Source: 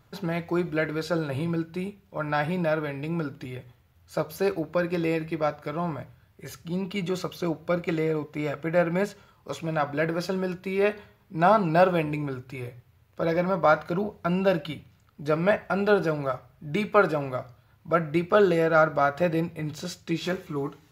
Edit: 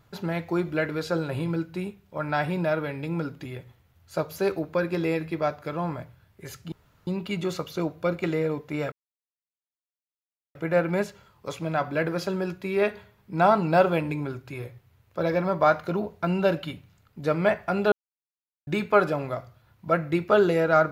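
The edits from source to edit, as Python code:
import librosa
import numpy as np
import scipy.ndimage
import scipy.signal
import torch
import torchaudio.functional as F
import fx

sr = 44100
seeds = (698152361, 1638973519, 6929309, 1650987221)

y = fx.edit(x, sr, fx.insert_room_tone(at_s=6.72, length_s=0.35),
    fx.insert_silence(at_s=8.57, length_s=1.63),
    fx.silence(start_s=15.94, length_s=0.75), tone=tone)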